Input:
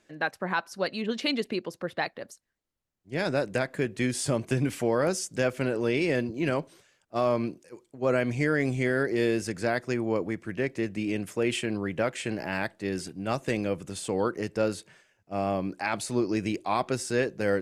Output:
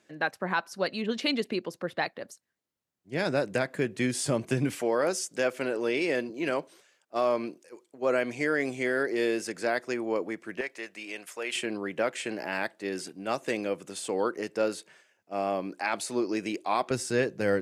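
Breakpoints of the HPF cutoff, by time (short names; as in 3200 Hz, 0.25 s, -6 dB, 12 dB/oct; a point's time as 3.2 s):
120 Hz
from 4.75 s 310 Hz
from 10.61 s 750 Hz
from 11.56 s 280 Hz
from 16.91 s 86 Hz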